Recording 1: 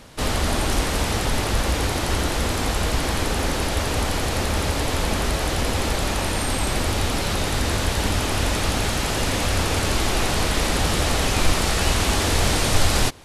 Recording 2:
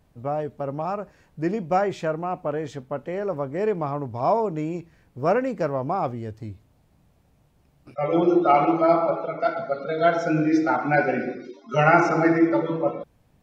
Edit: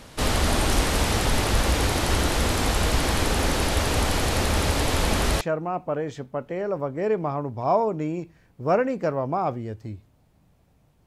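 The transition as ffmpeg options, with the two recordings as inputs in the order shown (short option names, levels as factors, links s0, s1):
-filter_complex "[0:a]apad=whole_dur=11.06,atrim=end=11.06,atrim=end=5.412[s0];[1:a]atrim=start=1.978:end=7.63[s1];[s0][s1]acrossfade=d=0.004:c1=hsin:c2=hsin"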